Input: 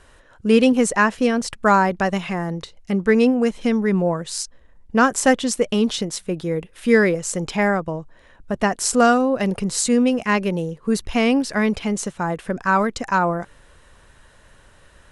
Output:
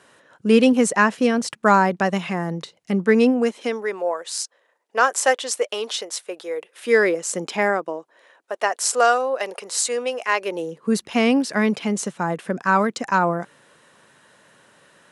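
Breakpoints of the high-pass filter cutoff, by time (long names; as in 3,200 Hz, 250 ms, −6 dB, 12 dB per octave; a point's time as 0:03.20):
high-pass filter 24 dB per octave
0:03.02 140 Hz
0:03.98 460 Hz
0:06.55 460 Hz
0:07.37 210 Hz
0:08.52 460 Hz
0:10.37 460 Hz
0:10.89 150 Hz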